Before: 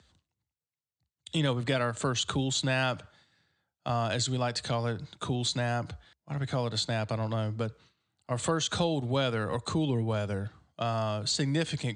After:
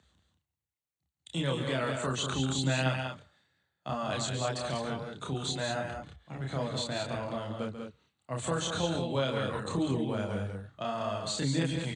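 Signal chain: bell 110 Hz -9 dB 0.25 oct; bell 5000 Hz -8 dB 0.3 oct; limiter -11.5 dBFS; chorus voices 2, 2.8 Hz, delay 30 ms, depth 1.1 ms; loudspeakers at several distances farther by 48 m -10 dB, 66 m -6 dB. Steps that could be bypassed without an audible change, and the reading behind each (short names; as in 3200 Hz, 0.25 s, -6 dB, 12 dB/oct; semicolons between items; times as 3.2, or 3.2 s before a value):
limiter -11.5 dBFS: input peak -15.5 dBFS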